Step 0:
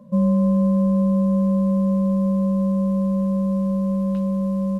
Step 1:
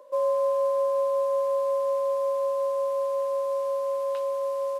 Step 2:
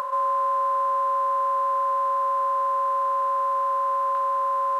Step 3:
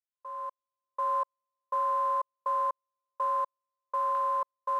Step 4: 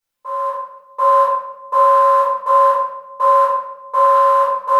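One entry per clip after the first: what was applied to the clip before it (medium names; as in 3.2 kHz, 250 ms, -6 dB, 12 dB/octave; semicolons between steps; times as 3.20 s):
steep high-pass 340 Hz 72 dB/octave; trim +4.5 dB
spectral levelling over time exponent 0.2; FFT filter 170 Hz 0 dB, 310 Hz -19 dB, 610 Hz -10 dB, 1.1 kHz +12 dB, 2.6 kHz -11 dB; upward compressor, threshold -32 dBFS; trim +1 dB
fade-in on the opening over 1.17 s; trance gate ".x..x..xx" 61 bpm -60 dB; trim -4.5 dB
reverberation RT60 0.90 s, pre-delay 7 ms, DRR -9 dB; trim +8 dB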